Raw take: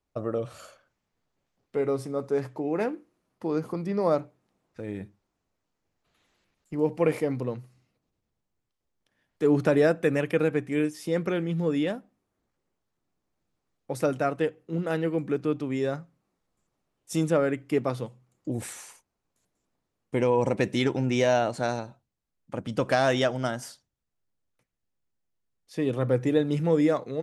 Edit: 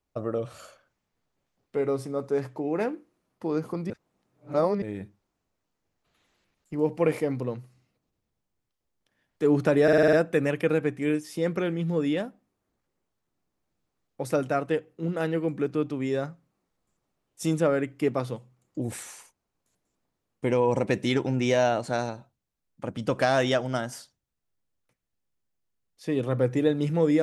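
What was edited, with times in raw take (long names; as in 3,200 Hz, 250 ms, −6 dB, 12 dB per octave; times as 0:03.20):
0:03.90–0:04.82: reverse
0:09.83: stutter 0.05 s, 7 plays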